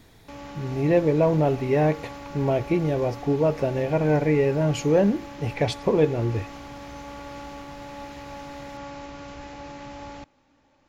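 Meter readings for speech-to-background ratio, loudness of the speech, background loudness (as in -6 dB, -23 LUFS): 16.0 dB, -23.5 LUFS, -39.5 LUFS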